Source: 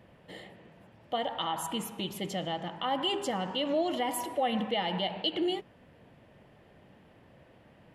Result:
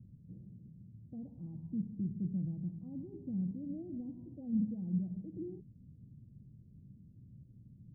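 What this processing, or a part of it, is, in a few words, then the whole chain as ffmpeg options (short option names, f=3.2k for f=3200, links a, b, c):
the neighbour's flat through the wall: -af "lowpass=f=210:w=0.5412,lowpass=f=210:w=1.3066,equalizer=f=120:t=o:w=0.45:g=5.5,volume=4dB"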